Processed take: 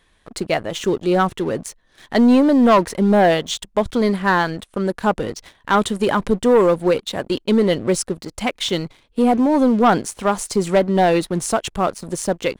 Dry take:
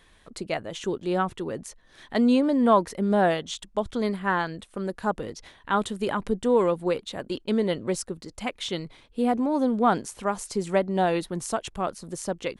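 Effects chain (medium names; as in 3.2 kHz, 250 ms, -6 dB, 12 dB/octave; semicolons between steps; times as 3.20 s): waveshaping leveller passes 2; trim +2 dB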